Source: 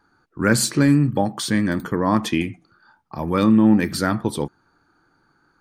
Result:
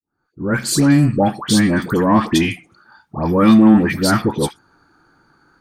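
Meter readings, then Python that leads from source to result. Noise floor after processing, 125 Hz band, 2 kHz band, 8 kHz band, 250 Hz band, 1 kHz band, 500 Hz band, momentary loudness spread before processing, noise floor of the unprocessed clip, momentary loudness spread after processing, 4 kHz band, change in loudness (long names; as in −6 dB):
−71 dBFS, +4.0 dB, +3.0 dB, +3.0 dB, +4.5 dB, +5.0 dB, +4.5 dB, 14 LU, −64 dBFS, 14 LU, +5.0 dB, +4.5 dB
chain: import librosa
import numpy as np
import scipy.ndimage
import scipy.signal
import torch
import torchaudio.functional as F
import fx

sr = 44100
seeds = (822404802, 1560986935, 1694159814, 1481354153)

y = fx.fade_in_head(x, sr, length_s=1.18)
y = fx.cheby_harmonics(y, sr, harmonics=(4, 5), levels_db=(-29, -24), full_scale_db=-5.0)
y = fx.dispersion(y, sr, late='highs', ms=105.0, hz=1300.0)
y = y * librosa.db_to_amplitude(4.5)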